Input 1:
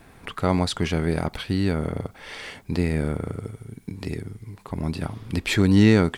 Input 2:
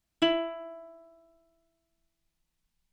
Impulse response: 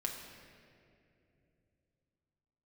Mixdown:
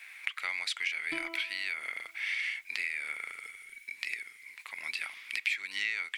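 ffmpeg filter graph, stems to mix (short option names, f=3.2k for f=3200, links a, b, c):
-filter_complex "[0:a]highpass=f=2.2k:t=q:w=6.5,volume=0dB[a];[1:a]aecho=1:1:0.9:0.78,adelay=900,volume=-9.5dB[b];[a][b]amix=inputs=2:normalize=0,acompressor=threshold=-31dB:ratio=5"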